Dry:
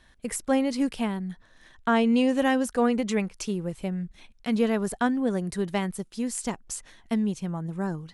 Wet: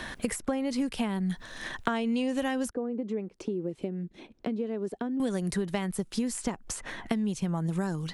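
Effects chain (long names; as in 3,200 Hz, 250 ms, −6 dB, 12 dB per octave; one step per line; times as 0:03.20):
downward compressor 6 to 1, threshold −35 dBFS, peak gain reduction 16 dB
0:02.70–0:05.20: resonant band-pass 350 Hz, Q 2.2
multiband upward and downward compressor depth 70%
level +8 dB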